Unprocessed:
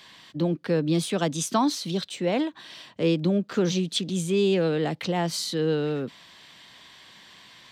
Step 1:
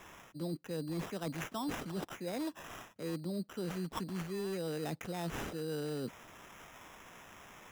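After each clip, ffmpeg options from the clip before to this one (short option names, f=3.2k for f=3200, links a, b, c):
-af "areverse,acompressor=threshold=-32dB:ratio=6,areverse,acrusher=samples=10:mix=1:aa=0.000001,volume=-4dB"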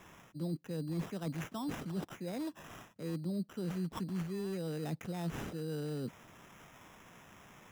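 -af "equalizer=f=150:t=o:w=1.8:g=7.5,volume=-4dB"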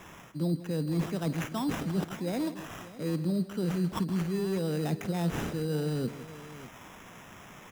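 -af "aecho=1:1:52|160|600:0.141|0.188|0.15,volume=7.5dB"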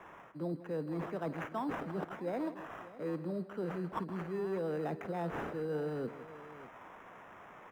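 -filter_complex "[0:a]acrossover=split=360 2000:gain=0.224 1 0.0891[a][b][c];[a][b][c]amix=inputs=3:normalize=0"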